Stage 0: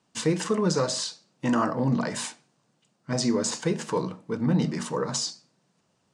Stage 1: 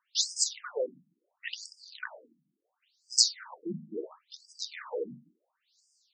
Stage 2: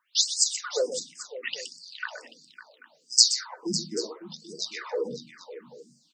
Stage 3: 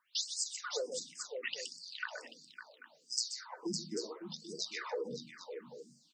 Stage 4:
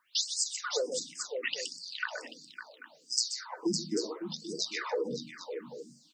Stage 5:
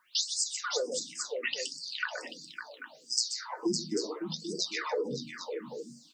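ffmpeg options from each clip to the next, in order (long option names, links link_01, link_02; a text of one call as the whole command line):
ffmpeg -i in.wav -af "equalizer=frequency=125:width_type=o:width=1:gain=5,equalizer=frequency=250:width_type=o:width=1:gain=-6,equalizer=frequency=4000:width_type=o:width=1:gain=11,equalizer=frequency=8000:width_type=o:width=1:gain=11,afftfilt=real='re*between(b*sr/1024,210*pow(6800/210,0.5+0.5*sin(2*PI*0.72*pts/sr))/1.41,210*pow(6800/210,0.5+0.5*sin(2*PI*0.72*pts/sr))*1.41)':imag='im*between(b*sr/1024,210*pow(6800/210,0.5+0.5*sin(2*PI*0.72*pts/sr))/1.41,210*pow(6800/210,0.5+0.5*sin(2*PI*0.72*pts/sr))*1.41)':win_size=1024:overlap=0.75,volume=-2.5dB" out.wav
ffmpeg -i in.wav -af "aecho=1:1:122|126|554|788:0.112|0.251|0.224|0.119,volume=5dB" out.wav
ffmpeg -i in.wav -af "acompressor=threshold=-32dB:ratio=5,volume=-3dB" out.wav
ffmpeg -i in.wav -af "equalizer=frequency=300:width_type=o:width=0.37:gain=5.5,volume=5.5dB" out.wav
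ffmpeg -i in.wav -filter_complex "[0:a]flanger=delay=5.3:depth=4.1:regen=62:speed=0.44:shape=triangular,asplit=2[link_01][link_02];[link_02]acompressor=threshold=-46dB:ratio=6,volume=-0.5dB[link_03];[link_01][link_03]amix=inputs=2:normalize=0,volume=3dB" out.wav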